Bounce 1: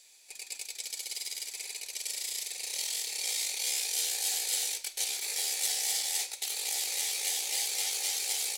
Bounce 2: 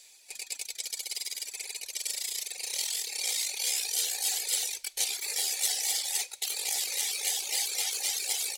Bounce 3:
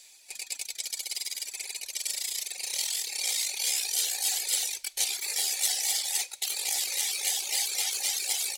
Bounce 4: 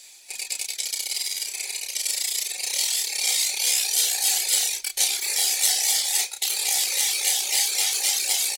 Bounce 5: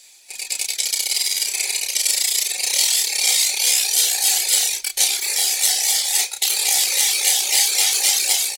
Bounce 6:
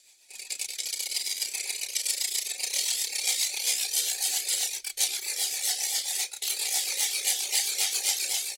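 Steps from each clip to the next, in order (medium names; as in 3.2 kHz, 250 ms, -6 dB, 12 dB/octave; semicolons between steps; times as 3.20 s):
reverb removal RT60 1.8 s; trim +4 dB
peaking EQ 460 Hz -5.5 dB 0.31 oct; trim +1.5 dB
doubling 31 ms -5.5 dB; trim +5.5 dB
level rider gain up to 11.5 dB; trim -1 dB
rotary cabinet horn 7.5 Hz; trim -7.5 dB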